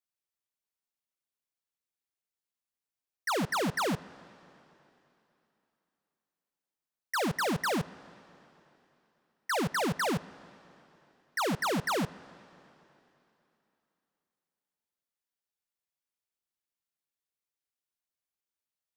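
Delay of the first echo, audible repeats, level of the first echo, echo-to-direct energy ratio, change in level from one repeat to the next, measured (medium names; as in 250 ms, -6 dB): no echo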